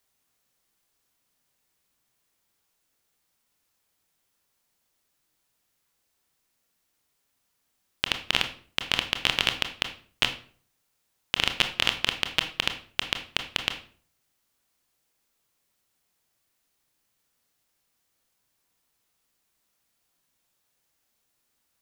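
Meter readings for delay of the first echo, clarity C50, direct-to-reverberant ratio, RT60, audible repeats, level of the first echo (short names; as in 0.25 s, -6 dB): none, 11.0 dB, 6.0 dB, 0.45 s, none, none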